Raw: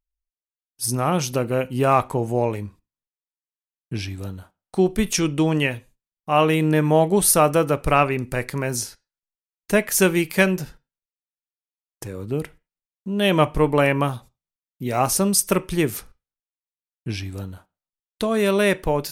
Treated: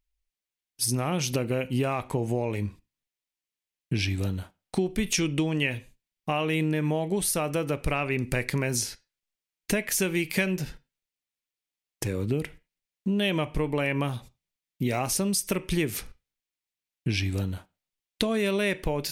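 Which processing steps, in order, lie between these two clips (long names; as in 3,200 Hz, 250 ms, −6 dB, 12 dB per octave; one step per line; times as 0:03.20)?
in parallel at −2.5 dB: brickwall limiter −13.5 dBFS, peak gain reduction 9.5 dB
on the sum: downward compressor 6 to 1, threshold −23 dBFS, peak gain reduction 13.5 dB
drawn EQ curve 290 Hz 0 dB, 1,300 Hz −5 dB, 2,200 Hz +4 dB, 13,000 Hz −3 dB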